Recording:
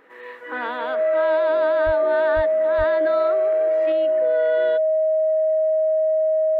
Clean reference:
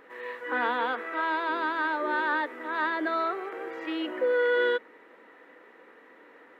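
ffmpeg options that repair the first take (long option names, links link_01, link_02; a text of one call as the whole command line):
ffmpeg -i in.wav -filter_complex "[0:a]bandreject=frequency=630:width=30,asplit=3[link_01][link_02][link_03];[link_01]afade=type=out:start_time=1.85:duration=0.02[link_04];[link_02]highpass=frequency=140:width=0.5412,highpass=frequency=140:width=1.3066,afade=type=in:start_time=1.85:duration=0.02,afade=type=out:start_time=1.97:duration=0.02[link_05];[link_03]afade=type=in:start_time=1.97:duration=0.02[link_06];[link_04][link_05][link_06]amix=inputs=3:normalize=0,asplit=3[link_07][link_08][link_09];[link_07]afade=type=out:start_time=2.35:duration=0.02[link_10];[link_08]highpass=frequency=140:width=0.5412,highpass=frequency=140:width=1.3066,afade=type=in:start_time=2.35:duration=0.02,afade=type=out:start_time=2.47:duration=0.02[link_11];[link_09]afade=type=in:start_time=2.47:duration=0.02[link_12];[link_10][link_11][link_12]amix=inputs=3:normalize=0,asplit=3[link_13][link_14][link_15];[link_13]afade=type=out:start_time=2.77:duration=0.02[link_16];[link_14]highpass=frequency=140:width=0.5412,highpass=frequency=140:width=1.3066,afade=type=in:start_time=2.77:duration=0.02,afade=type=out:start_time=2.89:duration=0.02[link_17];[link_15]afade=type=in:start_time=2.89:duration=0.02[link_18];[link_16][link_17][link_18]amix=inputs=3:normalize=0,asetnsamples=nb_out_samples=441:pad=0,asendcmd='3.92 volume volume 4.5dB',volume=0dB" out.wav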